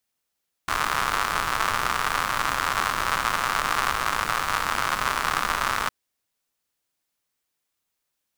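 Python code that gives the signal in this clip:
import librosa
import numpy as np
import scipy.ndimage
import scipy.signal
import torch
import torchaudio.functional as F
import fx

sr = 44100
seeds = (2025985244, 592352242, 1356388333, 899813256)

y = fx.rain(sr, seeds[0], length_s=5.21, drops_per_s=150.0, hz=1200.0, bed_db=-10.5)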